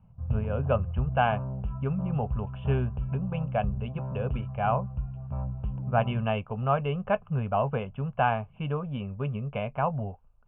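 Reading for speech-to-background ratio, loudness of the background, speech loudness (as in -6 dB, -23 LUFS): 4.0 dB, -34.5 LUFS, -30.5 LUFS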